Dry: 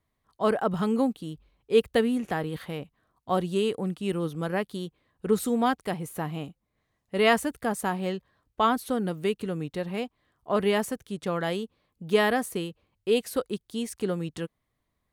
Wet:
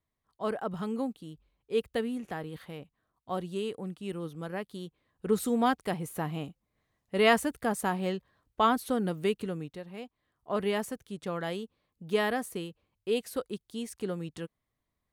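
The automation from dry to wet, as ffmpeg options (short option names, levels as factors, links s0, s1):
-af "volume=2,afade=t=in:st=4.61:d=1.07:silence=0.473151,afade=t=out:st=9.36:d=0.49:silence=0.266073,afade=t=in:st=9.85:d=0.69:silence=0.421697"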